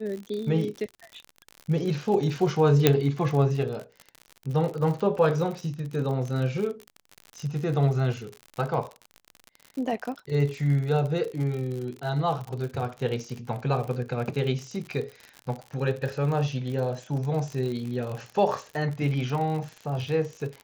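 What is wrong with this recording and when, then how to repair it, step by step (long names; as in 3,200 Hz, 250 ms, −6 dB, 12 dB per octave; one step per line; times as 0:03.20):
surface crackle 59 per second −32 dBFS
0:02.87: click −3 dBFS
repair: click removal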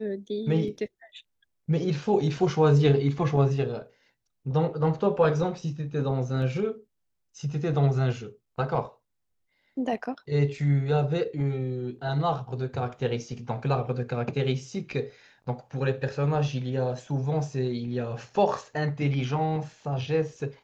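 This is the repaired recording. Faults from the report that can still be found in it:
none of them is left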